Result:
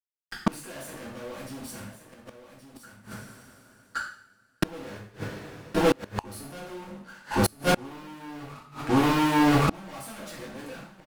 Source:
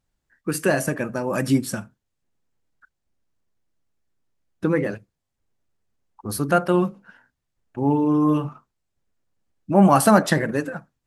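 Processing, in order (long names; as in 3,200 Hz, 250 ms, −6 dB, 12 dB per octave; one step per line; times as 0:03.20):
reversed playback
downward compressor 6 to 1, threshold −28 dBFS, peak gain reduction 17 dB
reversed playback
pitch vibrato 1.4 Hz 43 cents
fuzz pedal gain 48 dB, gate −55 dBFS
on a send: single-tap delay 1,121 ms −11.5 dB
on the sum: coupled-rooms reverb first 0.55 s, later 2.8 s, from −28 dB, DRR −5 dB
gate with flip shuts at −10 dBFS, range −32 dB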